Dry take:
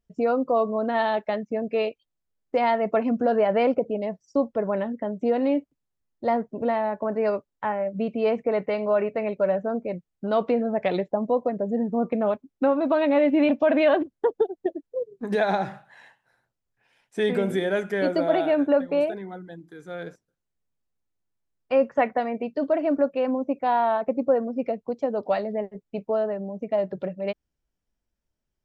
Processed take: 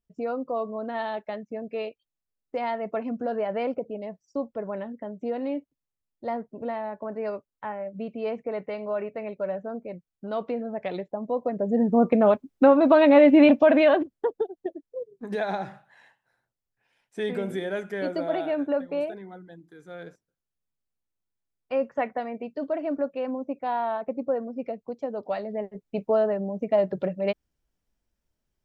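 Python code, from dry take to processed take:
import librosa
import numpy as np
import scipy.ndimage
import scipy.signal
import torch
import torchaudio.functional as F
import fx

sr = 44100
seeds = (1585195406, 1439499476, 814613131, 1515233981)

y = fx.gain(x, sr, db=fx.line((11.19, -7.0), (11.91, 5.0), (13.46, 5.0), (14.47, -5.5), (25.35, -5.5), (26.03, 2.5)))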